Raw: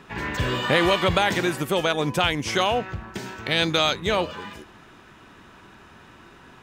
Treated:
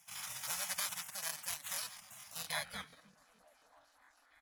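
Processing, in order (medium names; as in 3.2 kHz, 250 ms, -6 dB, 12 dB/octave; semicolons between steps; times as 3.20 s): bit-reversed sample order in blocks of 16 samples; band-pass sweep 4.2 kHz -> 230 Hz, 3.29–4.68 s; Chebyshev band-stop 140–970 Hz, order 2; spectral gate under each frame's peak -20 dB weak; saturation -32.5 dBFS, distortion -23 dB; tempo 1.5×; on a send: repeats whose band climbs or falls 299 ms, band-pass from 190 Hz, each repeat 0.7 oct, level -12 dB; on the sum: crackling interface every 0.23 s, samples 1024, repeat, from 0.81 s; trim +9.5 dB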